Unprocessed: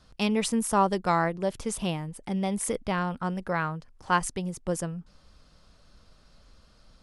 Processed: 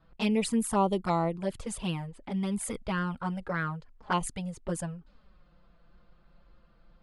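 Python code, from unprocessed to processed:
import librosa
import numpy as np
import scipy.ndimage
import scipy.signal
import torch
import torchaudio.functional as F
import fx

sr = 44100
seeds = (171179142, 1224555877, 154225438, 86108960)

y = fx.peak_eq(x, sr, hz=5700.0, db=-10.0, octaves=0.24)
y = fx.env_lowpass(y, sr, base_hz=2000.0, full_db=-25.5)
y = fx.env_flanger(y, sr, rest_ms=6.3, full_db=-21.0)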